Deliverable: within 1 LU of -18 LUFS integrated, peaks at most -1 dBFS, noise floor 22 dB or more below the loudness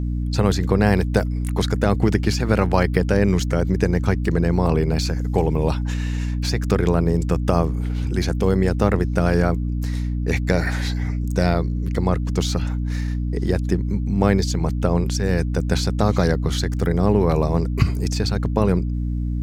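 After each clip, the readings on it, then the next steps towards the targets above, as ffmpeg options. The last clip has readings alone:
hum 60 Hz; harmonics up to 300 Hz; hum level -21 dBFS; loudness -21.0 LUFS; peak -1.5 dBFS; loudness target -18.0 LUFS
-> -af "bandreject=f=60:t=h:w=6,bandreject=f=120:t=h:w=6,bandreject=f=180:t=h:w=6,bandreject=f=240:t=h:w=6,bandreject=f=300:t=h:w=6"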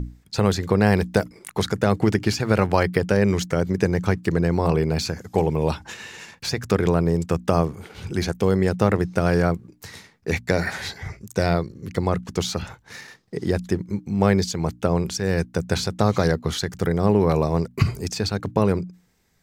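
hum none; loudness -23.0 LUFS; peak -3.0 dBFS; loudness target -18.0 LUFS
-> -af "volume=5dB,alimiter=limit=-1dB:level=0:latency=1"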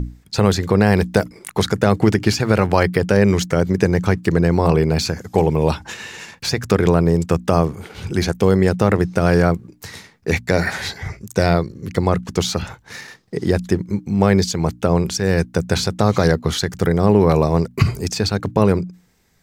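loudness -18.5 LUFS; peak -1.0 dBFS; noise floor -54 dBFS

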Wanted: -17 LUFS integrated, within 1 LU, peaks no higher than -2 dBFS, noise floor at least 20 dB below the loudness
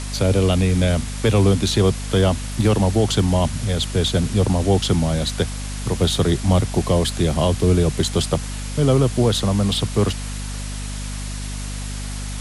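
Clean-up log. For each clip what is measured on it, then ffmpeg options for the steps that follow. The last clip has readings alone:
hum 50 Hz; harmonics up to 250 Hz; hum level -27 dBFS; noise floor -28 dBFS; noise floor target -40 dBFS; loudness -20.0 LUFS; peak -6.0 dBFS; loudness target -17.0 LUFS
-> -af "bandreject=f=50:t=h:w=6,bandreject=f=100:t=h:w=6,bandreject=f=150:t=h:w=6,bandreject=f=200:t=h:w=6,bandreject=f=250:t=h:w=6"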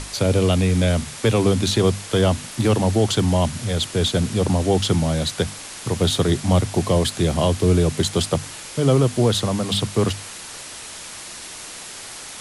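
hum none; noise floor -36 dBFS; noise floor target -40 dBFS
-> -af "afftdn=nr=6:nf=-36"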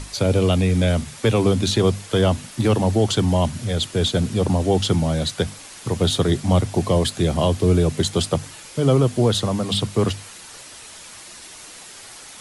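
noise floor -41 dBFS; loudness -20.5 LUFS; peak -6.0 dBFS; loudness target -17.0 LUFS
-> -af "volume=3.5dB"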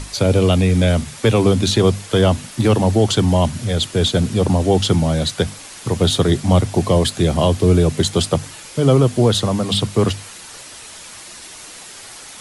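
loudness -17.0 LUFS; peak -2.5 dBFS; noise floor -37 dBFS

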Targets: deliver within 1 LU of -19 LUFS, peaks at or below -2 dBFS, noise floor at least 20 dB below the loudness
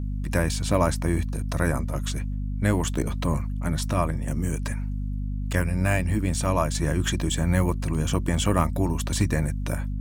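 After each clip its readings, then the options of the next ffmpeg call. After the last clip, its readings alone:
hum 50 Hz; harmonics up to 250 Hz; hum level -26 dBFS; loudness -26.0 LUFS; peak -5.0 dBFS; loudness target -19.0 LUFS
-> -af "bandreject=f=50:t=h:w=6,bandreject=f=100:t=h:w=6,bandreject=f=150:t=h:w=6,bandreject=f=200:t=h:w=6,bandreject=f=250:t=h:w=6"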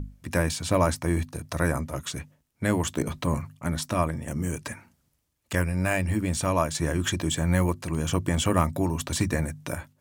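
hum none; loudness -27.5 LUFS; peak -5.5 dBFS; loudness target -19.0 LUFS
-> -af "volume=8.5dB,alimiter=limit=-2dB:level=0:latency=1"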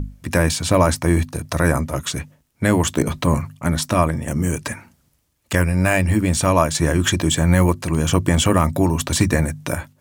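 loudness -19.0 LUFS; peak -2.0 dBFS; noise floor -64 dBFS

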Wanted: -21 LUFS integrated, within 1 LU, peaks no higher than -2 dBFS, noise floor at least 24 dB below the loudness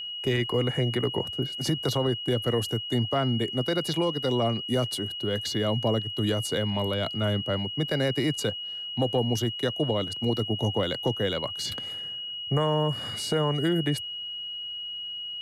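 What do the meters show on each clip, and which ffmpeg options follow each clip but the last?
steady tone 2900 Hz; tone level -33 dBFS; loudness -27.5 LUFS; peak -14.5 dBFS; loudness target -21.0 LUFS
-> -af "bandreject=f=2.9k:w=30"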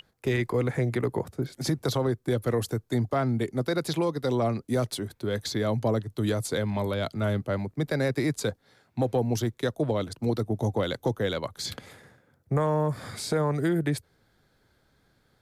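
steady tone none; loudness -28.5 LUFS; peak -15.5 dBFS; loudness target -21.0 LUFS
-> -af "volume=7.5dB"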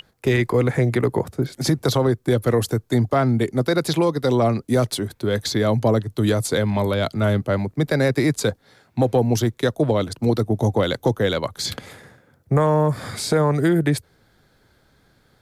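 loudness -21.0 LUFS; peak -8.0 dBFS; noise floor -61 dBFS

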